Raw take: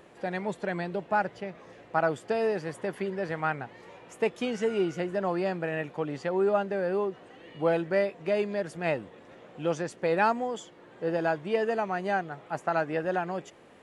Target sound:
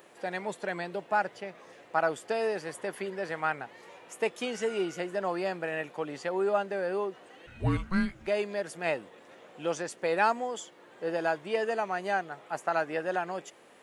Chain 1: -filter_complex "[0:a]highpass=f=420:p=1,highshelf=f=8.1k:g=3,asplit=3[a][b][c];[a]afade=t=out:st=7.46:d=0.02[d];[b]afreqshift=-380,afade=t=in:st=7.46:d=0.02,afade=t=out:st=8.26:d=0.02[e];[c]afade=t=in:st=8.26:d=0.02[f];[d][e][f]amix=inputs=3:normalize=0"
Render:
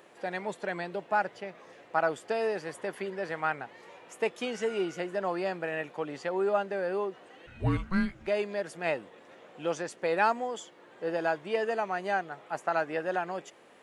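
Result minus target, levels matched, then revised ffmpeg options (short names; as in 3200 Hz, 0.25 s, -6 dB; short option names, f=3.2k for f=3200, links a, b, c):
8000 Hz band -3.5 dB
-filter_complex "[0:a]highpass=f=420:p=1,highshelf=f=8.1k:g=11,asplit=3[a][b][c];[a]afade=t=out:st=7.46:d=0.02[d];[b]afreqshift=-380,afade=t=in:st=7.46:d=0.02,afade=t=out:st=8.26:d=0.02[e];[c]afade=t=in:st=8.26:d=0.02[f];[d][e][f]amix=inputs=3:normalize=0"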